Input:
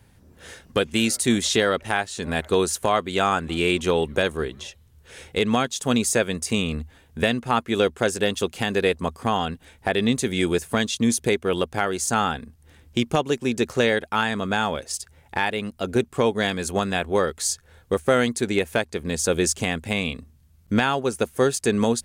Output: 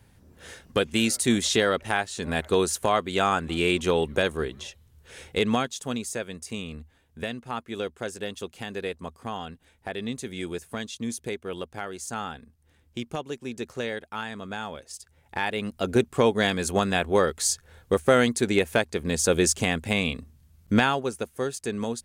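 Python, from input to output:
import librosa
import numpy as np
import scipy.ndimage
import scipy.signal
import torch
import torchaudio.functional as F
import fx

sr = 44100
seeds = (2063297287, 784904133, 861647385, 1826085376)

y = fx.gain(x, sr, db=fx.line((5.49, -2.0), (6.03, -11.0), (14.96, -11.0), (15.73, 0.0), (20.83, 0.0), (21.28, -9.0)))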